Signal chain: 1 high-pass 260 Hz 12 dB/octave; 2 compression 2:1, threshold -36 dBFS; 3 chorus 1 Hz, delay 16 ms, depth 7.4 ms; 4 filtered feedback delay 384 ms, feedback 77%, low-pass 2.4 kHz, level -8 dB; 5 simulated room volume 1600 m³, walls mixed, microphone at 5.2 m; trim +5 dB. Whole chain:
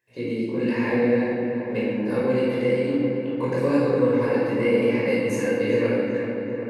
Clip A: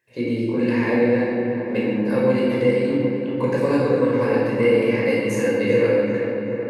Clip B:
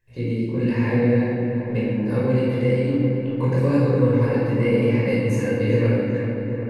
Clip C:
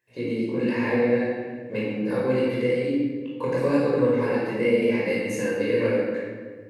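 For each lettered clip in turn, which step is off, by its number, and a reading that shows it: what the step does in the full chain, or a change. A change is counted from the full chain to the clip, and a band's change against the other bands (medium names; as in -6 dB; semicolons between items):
3, loudness change +3.0 LU; 1, loudness change +2.0 LU; 4, momentary loudness spread change +3 LU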